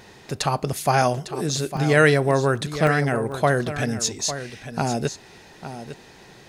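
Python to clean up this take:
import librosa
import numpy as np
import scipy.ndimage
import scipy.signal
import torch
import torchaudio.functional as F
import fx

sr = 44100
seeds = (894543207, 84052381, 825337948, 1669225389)

y = fx.fix_interpolate(x, sr, at_s=(1.02, 1.77, 2.56, 2.87, 3.32, 4.5), length_ms=2.1)
y = fx.fix_echo_inverse(y, sr, delay_ms=853, level_db=-11.5)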